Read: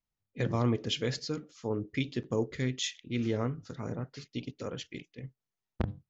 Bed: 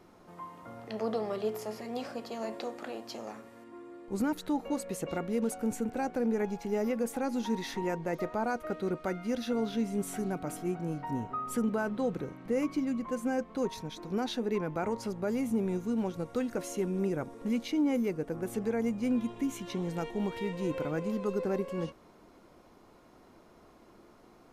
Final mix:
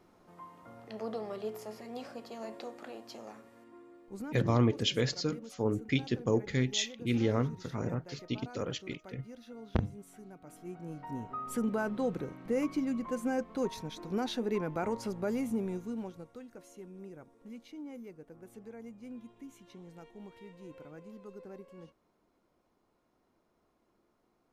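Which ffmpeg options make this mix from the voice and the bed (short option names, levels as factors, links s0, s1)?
-filter_complex "[0:a]adelay=3950,volume=1.26[s0];[1:a]volume=3.35,afade=t=out:st=3.67:d=0.88:silence=0.266073,afade=t=in:st=10.41:d=1.4:silence=0.158489,afade=t=out:st=15.27:d=1.12:silence=0.16788[s1];[s0][s1]amix=inputs=2:normalize=0"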